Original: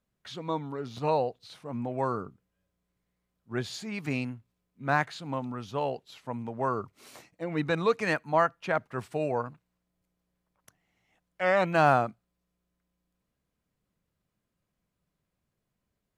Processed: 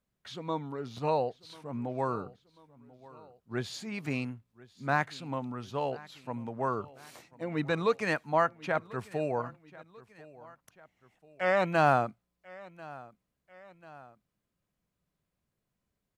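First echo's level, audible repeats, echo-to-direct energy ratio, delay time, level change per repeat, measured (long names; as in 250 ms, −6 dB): −21.0 dB, 2, −20.0 dB, 1,041 ms, −5.5 dB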